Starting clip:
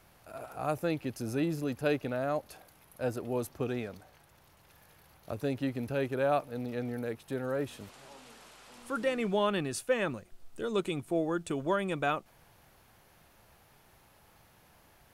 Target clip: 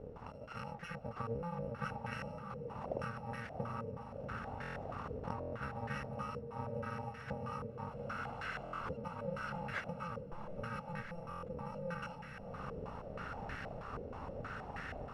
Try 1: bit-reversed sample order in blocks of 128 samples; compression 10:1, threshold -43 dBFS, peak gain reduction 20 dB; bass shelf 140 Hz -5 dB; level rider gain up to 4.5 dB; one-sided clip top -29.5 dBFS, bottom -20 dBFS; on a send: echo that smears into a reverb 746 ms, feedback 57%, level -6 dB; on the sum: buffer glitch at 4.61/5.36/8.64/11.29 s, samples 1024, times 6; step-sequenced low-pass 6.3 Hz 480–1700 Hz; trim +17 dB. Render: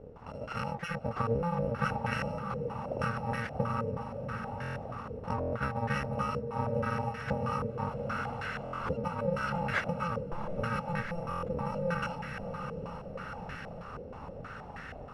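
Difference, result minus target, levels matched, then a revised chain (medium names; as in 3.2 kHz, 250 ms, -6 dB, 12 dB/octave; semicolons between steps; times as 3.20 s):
compression: peak gain reduction -10 dB
bit-reversed sample order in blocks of 128 samples; compression 10:1, threshold -54 dBFS, peak gain reduction 30 dB; bass shelf 140 Hz -5 dB; level rider gain up to 4.5 dB; one-sided clip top -29.5 dBFS, bottom -20 dBFS; on a send: echo that smears into a reverb 746 ms, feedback 57%, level -6 dB; on the sum: buffer glitch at 4.61/5.36/8.64/11.29 s, samples 1024, times 6; step-sequenced low-pass 6.3 Hz 480–1700 Hz; trim +17 dB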